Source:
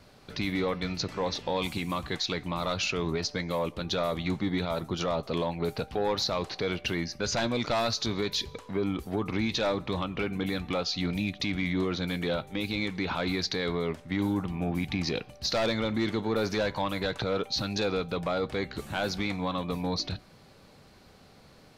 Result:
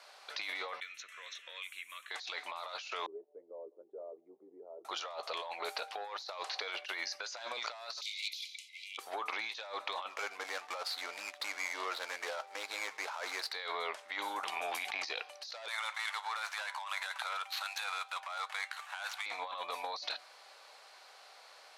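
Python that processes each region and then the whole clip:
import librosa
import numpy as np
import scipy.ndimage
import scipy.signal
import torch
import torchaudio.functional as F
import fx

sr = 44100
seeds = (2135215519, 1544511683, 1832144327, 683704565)

y = fx.chain(x, sr, fx.tone_stack(knobs='5-5-5'),
    fx.fixed_phaser(hz=2000.0, stages=4),
    fx.band_squash(depth_pct=100), at=(0.8, 2.11))
y = fx.chain(y, sr, fx.envelope_sharpen(power=1.5),
    fx.ladder_lowpass(hz=440.0, resonance_pct=65),
    fx.doubler(ms=15.0, db=-13.5), at=(3.06, 4.85))
y = fx.chain(y, sr, fx.clip_hard(threshold_db=-27.0),
    fx.transient(attack_db=-5, sustain_db=3),
    fx.brickwall_highpass(low_hz=2000.0), at=(8.01, 8.98))
y = fx.chain(y, sr, fx.median_filter(points=15),
    fx.highpass(hz=310.0, slope=6),
    fx.notch(hz=720.0, q=18.0), at=(10.09, 13.53))
y = fx.chain(y, sr, fx.transient(attack_db=-9, sustain_db=7),
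    fx.band_squash(depth_pct=100), at=(14.43, 15.05))
y = fx.chain(y, sr, fx.median_filter(points=9),
    fx.highpass(hz=860.0, slope=24), at=(15.68, 19.26))
y = scipy.signal.sosfilt(scipy.signal.butter(4, 670.0, 'highpass', fs=sr, output='sos'), y)
y = fx.over_compress(y, sr, threshold_db=-40.0, ratio=-1.0)
y = scipy.signal.sosfilt(scipy.signal.butter(2, 11000.0, 'lowpass', fs=sr, output='sos'), y)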